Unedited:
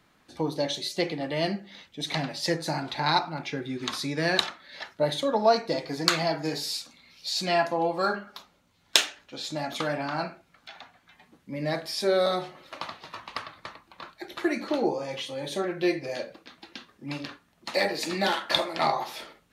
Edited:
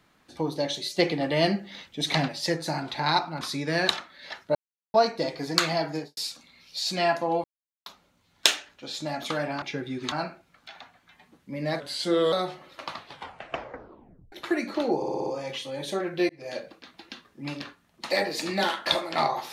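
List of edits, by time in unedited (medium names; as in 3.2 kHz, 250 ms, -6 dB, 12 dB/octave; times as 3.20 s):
0.99–2.28 s: gain +4.5 dB
3.41–3.91 s: move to 10.12 s
5.05–5.44 s: mute
6.40–6.67 s: studio fade out
7.94–8.36 s: mute
11.80–12.26 s: speed 88%
12.93 s: tape stop 1.33 s
14.90 s: stutter 0.06 s, 6 plays
15.93–16.22 s: fade in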